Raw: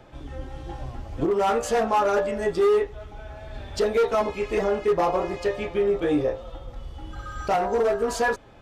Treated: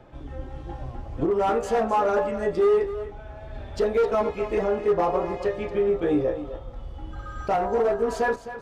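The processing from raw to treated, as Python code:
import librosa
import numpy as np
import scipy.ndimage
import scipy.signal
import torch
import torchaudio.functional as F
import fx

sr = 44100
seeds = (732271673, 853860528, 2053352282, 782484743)

y = fx.high_shelf(x, sr, hz=2500.0, db=-9.5)
y = y + 10.0 ** (-12.5 / 20.0) * np.pad(y, (int(260 * sr / 1000.0), 0))[:len(y)]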